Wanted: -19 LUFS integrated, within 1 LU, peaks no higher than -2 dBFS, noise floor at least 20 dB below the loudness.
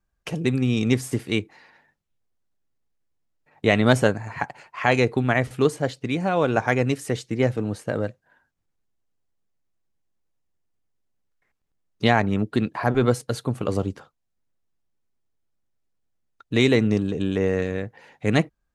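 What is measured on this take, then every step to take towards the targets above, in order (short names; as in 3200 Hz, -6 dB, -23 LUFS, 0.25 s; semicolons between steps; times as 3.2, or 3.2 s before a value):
loudness -23.5 LUFS; peak -3.5 dBFS; loudness target -19.0 LUFS
-> gain +4.5 dB; limiter -2 dBFS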